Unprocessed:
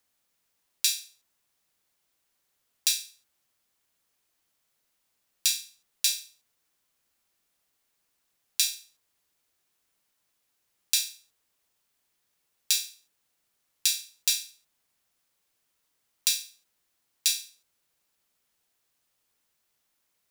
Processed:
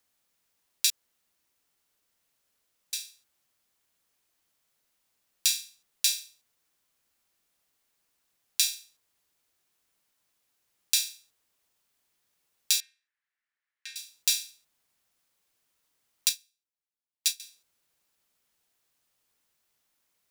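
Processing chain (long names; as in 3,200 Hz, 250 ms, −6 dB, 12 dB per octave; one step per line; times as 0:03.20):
0:00.90–0:02.93: fill with room tone
0:12.80–0:13.96: resonant band-pass 1,800 Hz, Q 3.9
0:16.29–0:17.40: expander for the loud parts 2.5 to 1, over −35 dBFS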